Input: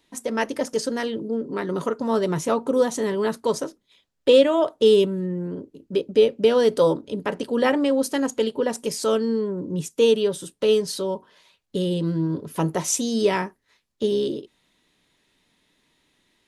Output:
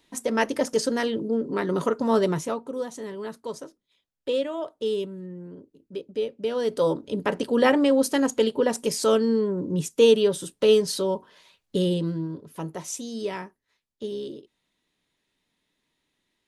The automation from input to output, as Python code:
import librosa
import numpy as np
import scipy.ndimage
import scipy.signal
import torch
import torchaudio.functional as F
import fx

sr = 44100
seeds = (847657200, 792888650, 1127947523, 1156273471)

y = fx.gain(x, sr, db=fx.line((2.25, 1.0), (2.67, -11.0), (6.39, -11.0), (7.19, 1.0), (11.87, 1.0), (12.4, -10.0)))